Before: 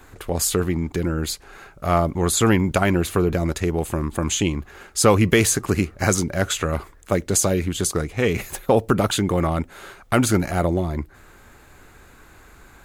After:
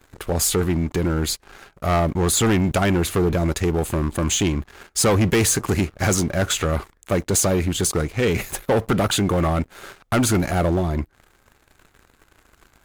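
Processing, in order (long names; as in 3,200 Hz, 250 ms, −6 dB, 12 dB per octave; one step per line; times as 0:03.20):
leveller curve on the samples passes 3
level −8 dB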